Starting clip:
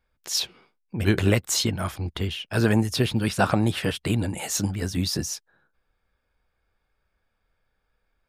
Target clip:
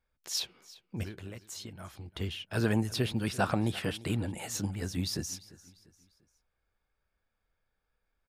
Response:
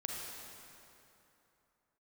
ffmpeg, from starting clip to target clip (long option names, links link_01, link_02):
-filter_complex "[0:a]asettb=1/sr,asplit=3[link_01][link_02][link_03];[link_01]atrim=end=1.034[link_04];[link_02]atrim=start=1.03:end=2.17,asetpts=PTS-STARTPTS,afade=type=in:duration=0.004:curve=qsin,afade=type=out:start_time=1.136:duration=0.004:curve=qsin,acompressor=threshold=-34dB:ratio=6[link_05];[link_03]atrim=start=2.166[link_06];[link_04][link_05]acrossfade=duration=0.004:curve1=hsin:curve2=qsin[link_07];[link_07][link_06]acrossfade=duration=0.004:curve1=qsin:curve2=hsin,aecho=1:1:346|692|1038:0.1|0.041|0.0168,asplit=3[link_08][link_09][link_10];[link_08]afade=type=out:start_time=4.15:duration=0.02[link_11];[link_09]adynamicequalizer=threshold=0.00794:dfrequency=2800:dqfactor=0.7:tfrequency=2800:tqfactor=0.7:attack=5:release=100:ratio=0.375:range=2:mode=cutabove:tftype=highshelf,afade=type=in:start_time=4.15:duration=0.02,afade=type=out:start_time=4.75:duration=0.02[link_12];[link_10]afade=type=in:start_time=4.75:duration=0.02[link_13];[link_11][link_12][link_13]amix=inputs=3:normalize=0,volume=-7.5dB"